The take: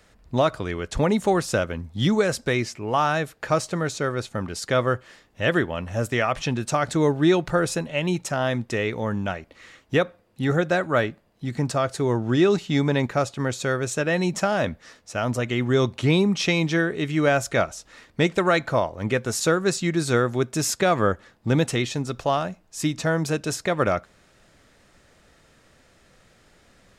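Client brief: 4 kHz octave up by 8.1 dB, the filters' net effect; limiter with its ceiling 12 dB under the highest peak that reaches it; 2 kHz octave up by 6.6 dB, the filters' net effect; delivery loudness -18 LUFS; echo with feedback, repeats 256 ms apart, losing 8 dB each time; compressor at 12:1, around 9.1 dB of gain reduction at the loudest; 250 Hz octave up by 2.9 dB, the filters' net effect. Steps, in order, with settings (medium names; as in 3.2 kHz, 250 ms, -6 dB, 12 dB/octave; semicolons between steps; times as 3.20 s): peaking EQ 250 Hz +4 dB; peaking EQ 2 kHz +6.5 dB; peaking EQ 4 kHz +8 dB; compression 12:1, threshold -21 dBFS; peak limiter -21 dBFS; feedback delay 256 ms, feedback 40%, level -8 dB; trim +12.5 dB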